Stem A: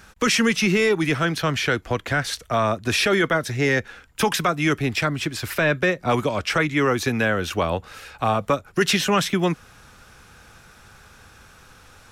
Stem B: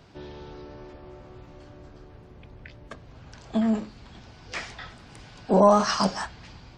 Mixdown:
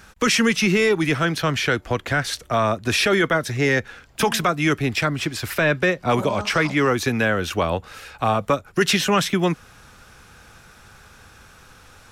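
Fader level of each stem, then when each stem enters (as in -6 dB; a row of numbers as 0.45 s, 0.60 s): +1.0 dB, -12.0 dB; 0.00 s, 0.65 s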